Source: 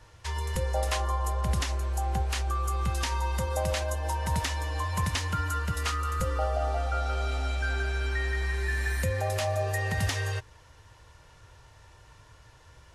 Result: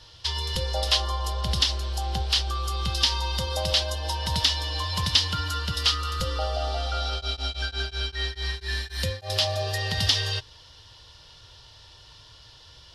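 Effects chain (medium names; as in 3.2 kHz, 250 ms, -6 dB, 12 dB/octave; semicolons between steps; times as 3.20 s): high-order bell 4 kHz +16 dB 1.1 oct; 7.09–9.29 s: tremolo of two beating tones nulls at 7 Hz -> 2.8 Hz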